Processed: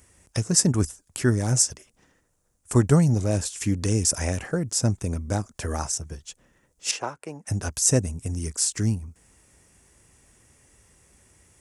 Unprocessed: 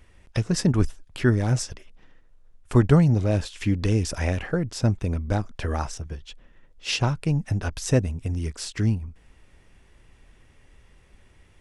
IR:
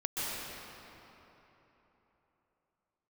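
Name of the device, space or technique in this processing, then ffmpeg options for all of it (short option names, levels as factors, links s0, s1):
budget condenser microphone: -filter_complex "[0:a]highpass=68,highshelf=f=5100:t=q:w=1.5:g=13,asettb=1/sr,asplit=3[s0][s1][s2];[s0]atrim=end=6.914[s3];[s1]atrim=start=6.91:end=7.47,asetpts=PTS-STARTPTS,afade=t=in:d=0.004:c=qsin,afade=t=out:st=0.556:d=0.004:c=qsin,acrossover=split=340 2600:gain=0.0631 1 0.178[s4][s5][s6];[s4][s5][s6]amix=inputs=3:normalize=0[s7];[s2]atrim=start=7.466[s8];[s3][s7]acrossfade=d=0.004:c1=hsin:c2=qsin[s9];[s9][s8]acrossfade=d=0.004:c1=qsin:c2=hsin,volume=0.891"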